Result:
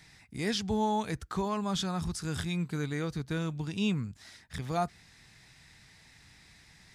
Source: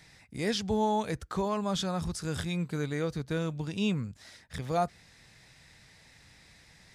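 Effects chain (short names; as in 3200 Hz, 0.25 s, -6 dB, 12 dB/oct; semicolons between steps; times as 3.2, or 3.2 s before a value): bell 540 Hz -8 dB 0.49 oct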